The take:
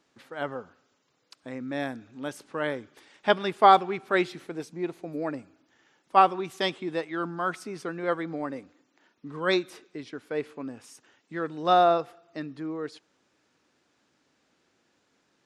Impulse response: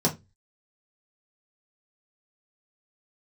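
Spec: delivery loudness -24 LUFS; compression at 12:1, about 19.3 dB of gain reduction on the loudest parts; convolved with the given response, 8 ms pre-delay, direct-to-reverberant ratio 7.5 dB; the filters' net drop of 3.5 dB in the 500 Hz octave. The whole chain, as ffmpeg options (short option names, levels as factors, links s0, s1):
-filter_complex "[0:a]equalizer=f=500:t=o:g=-5,acompressor=threshold=0.0224:ratio=12,asplit=2[s0][s1];[1:a]atrim=start_sample=2205,adelay=8[s2];[s1][s2]afir=irnorm=-1:irlink=0,volume=0.112[s3];[s0][s3]amix=inputs=2:normalize=0,volume=4.73"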